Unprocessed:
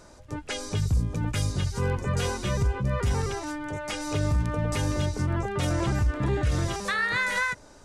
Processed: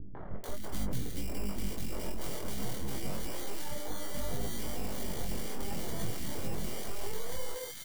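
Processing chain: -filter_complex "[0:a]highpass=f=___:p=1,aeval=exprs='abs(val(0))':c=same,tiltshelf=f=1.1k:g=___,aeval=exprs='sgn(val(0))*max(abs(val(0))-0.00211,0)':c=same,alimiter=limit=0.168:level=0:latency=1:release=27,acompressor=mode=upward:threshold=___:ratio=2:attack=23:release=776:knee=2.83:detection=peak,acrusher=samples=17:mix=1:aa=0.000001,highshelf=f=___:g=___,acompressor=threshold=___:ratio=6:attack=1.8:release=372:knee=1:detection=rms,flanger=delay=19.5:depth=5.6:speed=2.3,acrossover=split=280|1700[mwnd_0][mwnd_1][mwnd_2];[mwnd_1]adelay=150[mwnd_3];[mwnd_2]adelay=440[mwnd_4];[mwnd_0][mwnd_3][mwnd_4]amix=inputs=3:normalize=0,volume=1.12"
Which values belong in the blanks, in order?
90, 8, 0.0562, 5.6k, 12, 0.0631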